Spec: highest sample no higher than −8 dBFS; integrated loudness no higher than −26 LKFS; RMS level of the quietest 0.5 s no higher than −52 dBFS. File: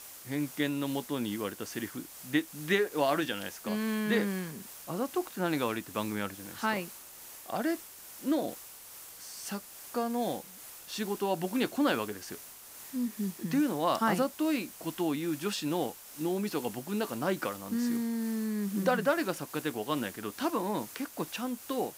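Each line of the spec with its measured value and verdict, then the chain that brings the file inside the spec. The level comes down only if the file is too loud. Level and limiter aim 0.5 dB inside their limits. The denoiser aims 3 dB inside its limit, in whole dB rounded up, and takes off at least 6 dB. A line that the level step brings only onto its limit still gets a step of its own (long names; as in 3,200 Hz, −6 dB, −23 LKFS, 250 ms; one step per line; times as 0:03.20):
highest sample −14.0 dBFS: in spec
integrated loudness −32.5 LKFS: in spec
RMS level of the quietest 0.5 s −49 dBFS: out of spec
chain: broadband denoise 6 dB, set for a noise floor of −49 dBFS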